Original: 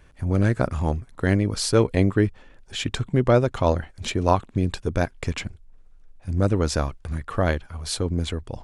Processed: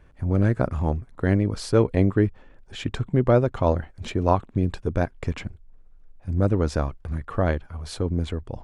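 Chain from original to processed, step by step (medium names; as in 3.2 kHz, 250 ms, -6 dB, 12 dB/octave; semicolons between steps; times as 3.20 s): treble shelf 2.5 kHz -11.5 dB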